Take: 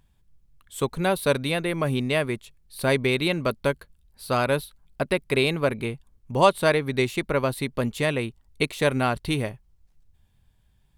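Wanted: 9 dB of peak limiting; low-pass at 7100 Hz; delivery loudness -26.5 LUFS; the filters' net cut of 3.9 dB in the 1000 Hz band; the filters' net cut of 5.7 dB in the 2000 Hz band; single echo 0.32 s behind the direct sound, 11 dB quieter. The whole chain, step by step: LPF 7100 Hz; bell 1000 Hz -3.5 dB; bell 2000 Hz -6.5 dB; limiter -17 dBFS; echo 0.32 s -11 dB; gain +3 dB

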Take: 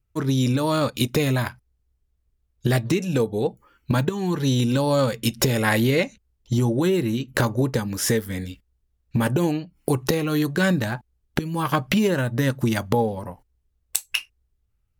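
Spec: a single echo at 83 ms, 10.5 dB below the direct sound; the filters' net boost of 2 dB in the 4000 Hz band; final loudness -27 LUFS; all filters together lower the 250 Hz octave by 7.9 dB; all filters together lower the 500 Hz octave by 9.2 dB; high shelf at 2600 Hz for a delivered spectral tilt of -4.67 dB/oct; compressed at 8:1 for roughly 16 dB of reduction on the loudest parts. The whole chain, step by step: bell 250 Hz -8.5 dB; bell 500 Hz -8.5 dB; high shelf 2600 Hz -7 dB; bell 4000 Hz +8.5 dB; compressor 8:1, threshold -38 dBFS; echo 83 ms -10.5 dB; gain +14.5 dB

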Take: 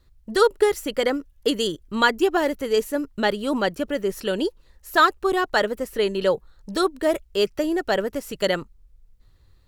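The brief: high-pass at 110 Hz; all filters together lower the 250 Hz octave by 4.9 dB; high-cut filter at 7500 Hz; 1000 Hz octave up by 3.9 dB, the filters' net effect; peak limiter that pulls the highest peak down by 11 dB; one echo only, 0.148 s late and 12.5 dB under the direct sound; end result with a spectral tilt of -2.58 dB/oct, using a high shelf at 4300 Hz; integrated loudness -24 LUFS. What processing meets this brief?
HPF 110 Hz; LPF 7500 Hz; bell 250 Hz -7.5 dB; bell 1000 Hz +5 dB; high shelf 4300 Hz +8 dB; limiter -12.5 dBFS; echo 0.148 s -12.5 dB; gain +1.5 dB

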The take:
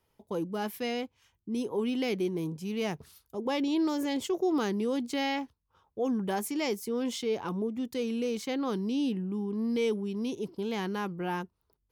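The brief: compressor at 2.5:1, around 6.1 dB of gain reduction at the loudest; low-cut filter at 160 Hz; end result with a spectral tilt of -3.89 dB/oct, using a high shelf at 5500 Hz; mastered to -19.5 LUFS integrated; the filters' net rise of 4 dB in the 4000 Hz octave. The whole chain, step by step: HPF 160 Hz; bell 4000 Hz +8.5 dB; high shelf 5500 Hz -7.5 dB; compressor 2.5:1, threshold -34 dBFS; gain +17 dB

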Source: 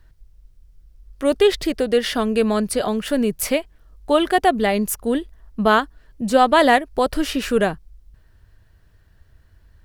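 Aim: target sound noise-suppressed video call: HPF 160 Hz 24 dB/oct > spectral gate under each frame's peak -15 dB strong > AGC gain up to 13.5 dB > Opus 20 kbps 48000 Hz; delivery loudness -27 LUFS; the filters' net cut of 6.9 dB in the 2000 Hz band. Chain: HPF 160 Hz 24 dB/oct; bell 2000 Hz -9 dB; spectral gate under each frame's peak -15 dB strong; AGC gain up to 13.5 dB; gain -6 dB; Opus 20 kbps 48000 Hz

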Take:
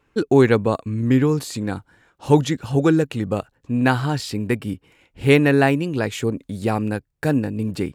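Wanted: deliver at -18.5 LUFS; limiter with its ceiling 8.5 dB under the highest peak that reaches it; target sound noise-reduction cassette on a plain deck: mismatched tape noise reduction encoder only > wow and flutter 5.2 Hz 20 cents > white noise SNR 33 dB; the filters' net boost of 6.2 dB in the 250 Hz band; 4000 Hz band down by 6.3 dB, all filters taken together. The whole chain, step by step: bell 250 Hz +7.5 dB; bell 4000 Hz -8.5 dB; limiter -7.5 dBFS; mismatched tape noise reduction encoder only; wow and flutter 5.2 Hz 20 cents; white noise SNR 33 dB; gain +0.5 dB

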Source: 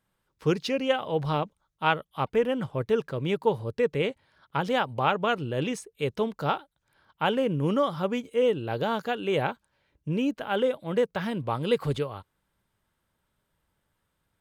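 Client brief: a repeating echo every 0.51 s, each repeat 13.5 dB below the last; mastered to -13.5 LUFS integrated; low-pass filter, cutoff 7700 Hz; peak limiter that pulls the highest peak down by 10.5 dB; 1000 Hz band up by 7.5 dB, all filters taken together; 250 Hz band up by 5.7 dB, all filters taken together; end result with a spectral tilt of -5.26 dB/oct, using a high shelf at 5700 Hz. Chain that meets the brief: LPF 7700 Hz; bell 250 Hz +6.5 dB; bell 1000 Hz +9 dB; high shelf 5700 Hz +5 dB; limiter -14 dBFS; feedback echo 0.51 s, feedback 21%, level -13.5 dB; gain +12 dB

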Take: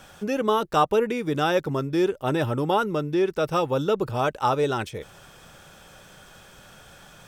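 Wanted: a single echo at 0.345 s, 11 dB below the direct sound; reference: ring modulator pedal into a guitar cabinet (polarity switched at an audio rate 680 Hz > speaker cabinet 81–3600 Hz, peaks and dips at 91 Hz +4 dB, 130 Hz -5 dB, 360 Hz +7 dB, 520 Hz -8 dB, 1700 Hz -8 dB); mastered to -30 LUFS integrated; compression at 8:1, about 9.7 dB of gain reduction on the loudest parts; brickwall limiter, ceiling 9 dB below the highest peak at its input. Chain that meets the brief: compressor 8:1, threshold -27 dBFS; limiter -26.5 dBFS; echo 0.345 s -11 dB; polarity switched at an audio rate 680 Hz; speaker cabinet 81–3600 Hz, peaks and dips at 91 Hz +4 dB, 130 Hz -5 dB, 360 Hz +7 dB, 520 Hz -8 dB, 1700 Hz -8 dB; gain +5.5 dB

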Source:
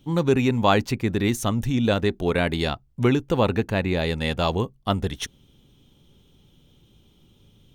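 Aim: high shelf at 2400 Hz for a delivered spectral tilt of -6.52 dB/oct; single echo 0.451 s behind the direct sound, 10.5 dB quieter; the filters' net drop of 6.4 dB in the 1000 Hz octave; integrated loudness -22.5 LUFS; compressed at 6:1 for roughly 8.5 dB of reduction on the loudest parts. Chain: bell 1000 Hz -7.5 dB; high shelf 2400 Hz -8 dB; compressor 6:1, threshold -25 dBFS; echo 0.451 s -10.5 dB; gain +8 dB

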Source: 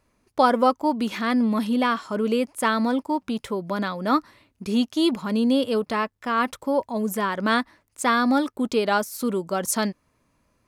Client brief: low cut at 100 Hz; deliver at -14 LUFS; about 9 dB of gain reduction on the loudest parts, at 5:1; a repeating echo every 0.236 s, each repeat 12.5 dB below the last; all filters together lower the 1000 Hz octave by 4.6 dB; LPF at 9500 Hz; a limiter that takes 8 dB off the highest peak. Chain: HPF 100 Hz; LPF 9500 Hz; bell 1000 Hz -6 dB; compressor 5:1, threshold -27 dBFS; limiter -24 dBFS; feedback echo 0.236 s, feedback 24%, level -12.5 dB; gain +19 dB

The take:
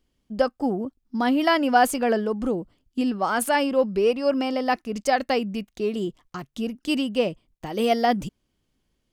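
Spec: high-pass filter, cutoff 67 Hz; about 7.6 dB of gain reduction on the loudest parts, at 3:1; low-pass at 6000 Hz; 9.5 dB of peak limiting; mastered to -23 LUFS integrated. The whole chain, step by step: HPF 67 Hz; LPF 6000 Hz; compressor 3:1, threshold -24 dBFS; gain +8 dB; limiter -13.5 dBFS

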